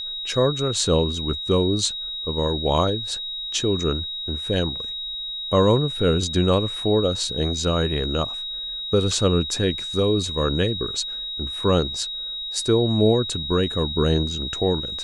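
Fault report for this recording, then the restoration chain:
whine 3.8 kHz -28 dBFS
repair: band-stop 3.8 kHz, Q 30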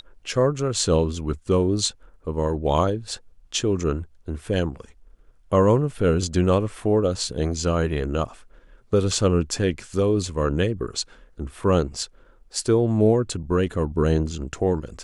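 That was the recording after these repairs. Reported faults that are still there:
nothing left

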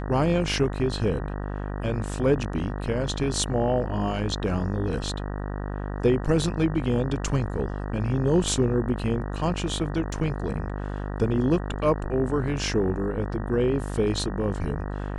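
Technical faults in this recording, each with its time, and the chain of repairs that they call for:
buzz 50 Hz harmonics 38 -31 dBFS
10.12 s: dropout 3.2 ms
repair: de-hum 50 Hz, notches 38; interpolate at 10.12 s, 3.2 ms

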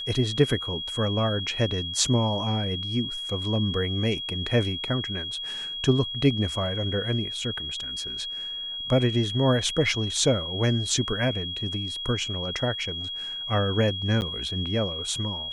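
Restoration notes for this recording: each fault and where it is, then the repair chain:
whine 3.3 kHz -31 dBFS
14.21–14.22 s: dropout 9.6 ms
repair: band-stop 3.3 kHz, Q 30; interpolate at 14.21 s, 9.6 ms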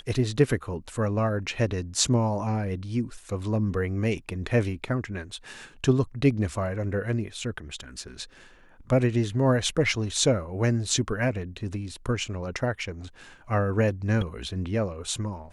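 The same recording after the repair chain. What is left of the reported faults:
nothing left

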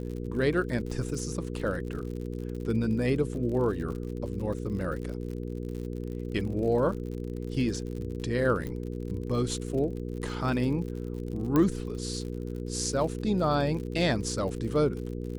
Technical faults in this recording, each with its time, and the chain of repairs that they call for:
crackle 59 per s -37 dBFS
hum 60 Hz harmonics 8 -35 dBFS
8.67 s: pop -23 dBFS
11.56 s: pop -13 dBFS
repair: de-click; de-hum 60 Hz, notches 8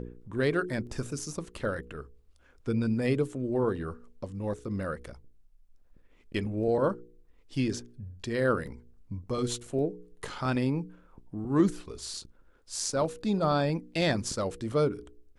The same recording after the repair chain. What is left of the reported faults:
8.67 s: pop

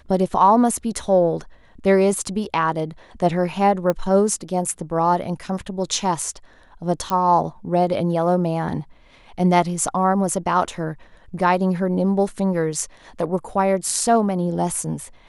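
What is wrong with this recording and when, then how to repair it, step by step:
3.90 s: pop -9 dBFS
7.10 s: pop -11 dBFS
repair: de-click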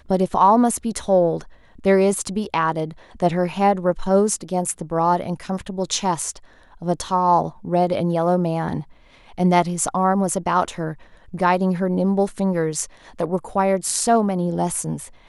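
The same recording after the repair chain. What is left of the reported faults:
nothing left

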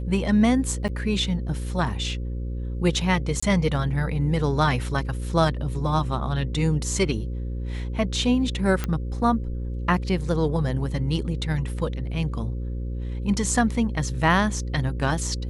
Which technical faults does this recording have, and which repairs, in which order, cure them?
buzz 60 Hz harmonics 9 -29 dBFS
0.88–0.89 s: dropout 8.1 ms
3.40–3.42 s: dropout 25 ms
8.84 s: pop -12 dBFS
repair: de-click; de-hum 60 Hz, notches 9; interpolate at 0.88 s, 8.1 ms; interpolate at 3.40 s, 25 ms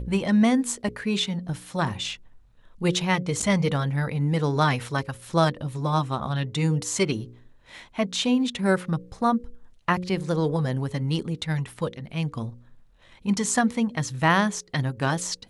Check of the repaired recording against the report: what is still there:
nothing left

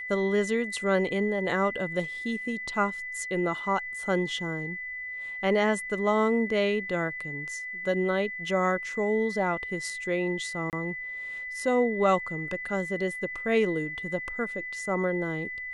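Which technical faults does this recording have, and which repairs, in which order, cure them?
whine 2 kHz -34 dBFS
10.70–10.73 s: dropout 28 ms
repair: band-stop 2 kHz, Q 30; interpolate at 10.70 s, 28 ms

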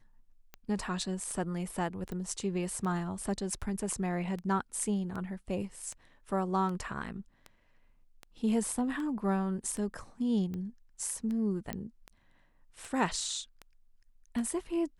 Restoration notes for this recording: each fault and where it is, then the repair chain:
tick 78 rpm -28 dBFS
2.12 s: pop -28 dBFS
11.73 s: pop -21 dBFS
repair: de-click

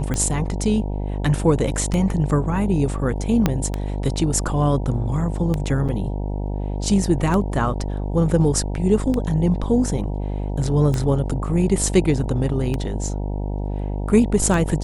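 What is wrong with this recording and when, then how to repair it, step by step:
buzz 50 Hz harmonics 19 -25 dBFS
tick 33 1/3 rpm -11 dBFS
3.46 s: pop -4 dBFS
5.88–5.89 s: dropout 7.5 ms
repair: de-click; de-hum 50 Hz, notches 19; interpolate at 5.88 s, 7.5 ms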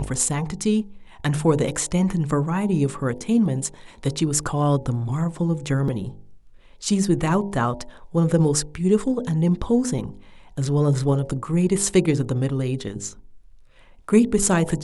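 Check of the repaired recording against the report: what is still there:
3.46 s: pop

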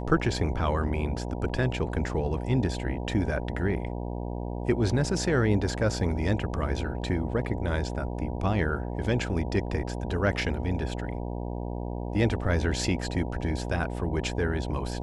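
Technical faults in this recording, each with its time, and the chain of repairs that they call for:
buzz 60 Hz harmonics 16 -33 dBFS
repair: de-hum 60 Hz, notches 16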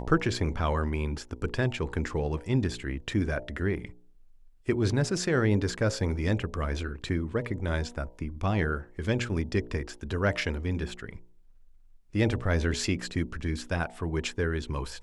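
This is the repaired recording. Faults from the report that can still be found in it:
nothing left

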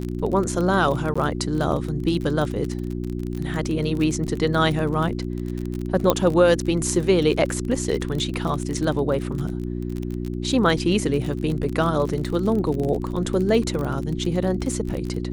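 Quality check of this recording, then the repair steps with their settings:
crackle 33 per s -26 dBFS
hum 60 Hz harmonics 6 -28 dBFS
1.14–1.16 s: dropout 15 ms
6.10 s: pop -4 dBFS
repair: de-click; de-hum 60 Hz, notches 6; interpolate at 1.14 s, 15 ms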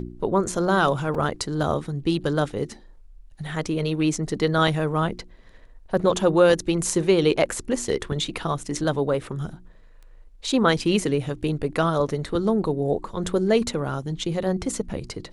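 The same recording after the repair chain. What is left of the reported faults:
nothing left

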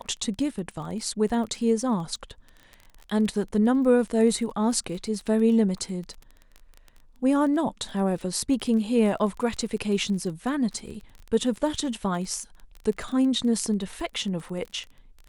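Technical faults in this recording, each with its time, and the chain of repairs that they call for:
crackle 23 per s -33 dBFS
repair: de-click

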